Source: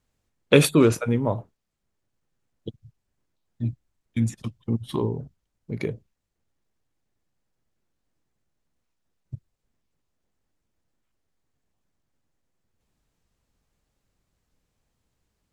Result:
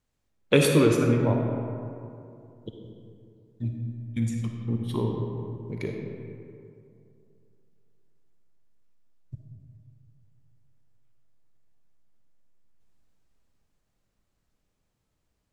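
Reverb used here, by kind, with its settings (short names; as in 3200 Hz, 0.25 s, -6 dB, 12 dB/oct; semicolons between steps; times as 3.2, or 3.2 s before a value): digital reverb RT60 2.6 s, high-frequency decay 0.45×, pre-delay 15 ms, DRR 1.5 dB; gain -4 dB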